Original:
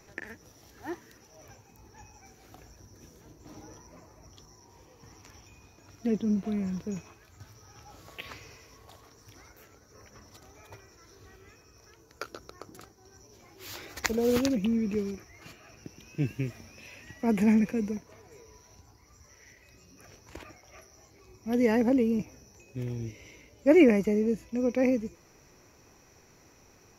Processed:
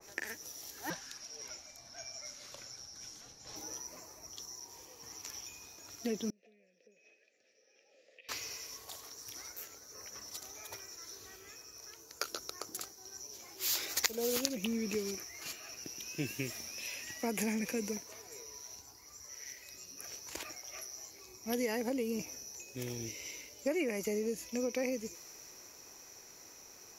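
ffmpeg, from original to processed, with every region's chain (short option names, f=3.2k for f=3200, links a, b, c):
-filter_complex "[0:a]asettb=1/sr,asplit=3[a][b][c];[a]atrim=end=0.904[d];[b]atrim=start=0.9:end=3.56,asetpts=PTS-STARTPTS,afade=t=in:d=0.004:c=qsin,afade=t=out:st=2.656:d=0.004:c=qsin,lowpass=6.5k,tiltshelf=f=660:g=-3,afreqshift=-180[e];[c]atrim=start=3.556[f];[d][e]acrossfade=d=0.004:c1=hsin:c2=qsin[g];[g][f]acrossfade=d=0.004:c1=qsin:c2=hsin,asettb=1/sr,asplit=3[h][i][j];[h]atrim=end=6.304[k];[i]atrim=start=6.3:end=8.29,asetpts=PTS-STARTPTS,afade=t=in:d=0.004:c=qsin,afade=t=out:st=1.986:d=0.004:c=qsin,acompressor=threshold=-46dB:ratio=4:attack=3.2:release=140:knee=1:detection=peak,asplit=3[l][m][n];[l]bandpass=f=530:t=q:w=8,volume=0dB[o];[m]bandpass=f=1.84k:t=q:w=8,volume=-6dB[p];[n]bandpass=f=2.48k:t=q:w=8,volume=-9dB[q];[o][p][q]amix=inputs=3:normalize=0,highpass=190,equalizer=f=220:t=q:w=4:g=9,equalizer=f=920:t=q:w=4:g=-8,equalizer=f=1.5k:t=q:w=4:g=-8,equalizer=f=2.3k:t=q:w=4:g=6,equalizer=f=5.2k:t=q:w=4:g=4,lowpass=f=8.5k:w=0.5412,lowpass=f=8.5k:w=1.3066[r];[j]atrim=start=8.286[s];[k][r]acrossfade=d=0.004:c1=hsin:c2=qsin[t];[t][s]acrossfade=d=0.004:c1=qsin:c2=hsin,bass=f=250:g=-11,treble=f=4k:g=11,acompressor=threshold=-31dB:ratio=8,adynamicequalizer=threshold=0.00158:dfrequency=1900:dqfactor=0.7:tfrequency=1900:tqfactor=0.7:attack=5:release=100:ratio=0.375:range=2:mode=boostabove:tftype=highshelf"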